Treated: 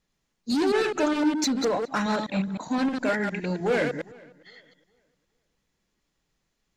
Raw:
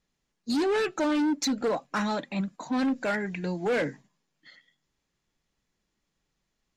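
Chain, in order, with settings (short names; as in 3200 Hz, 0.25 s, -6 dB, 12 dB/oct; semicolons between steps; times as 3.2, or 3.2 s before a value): reverse delay 0.103 s, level -4.5 dB; darkening echo 0.411 s, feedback 29%, low-pass 3400 Hz, level -24 dB; gain +1.5 dB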